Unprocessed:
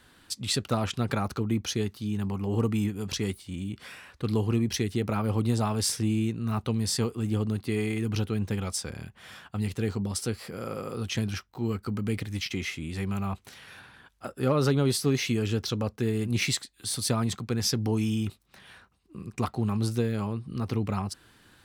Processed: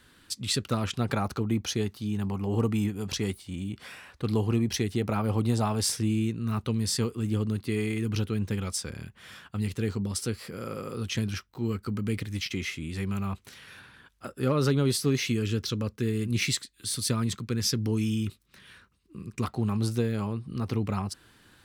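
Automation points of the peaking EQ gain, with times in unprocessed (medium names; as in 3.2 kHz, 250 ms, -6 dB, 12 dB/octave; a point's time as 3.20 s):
peaking EQ 750 Hz 0.65 oct
-7 dB
from 0.94 s +1.5 dB
from 5.97 s -6.5 dB
from 15.32 s -13 dB
from 19.45 s -1.5 dB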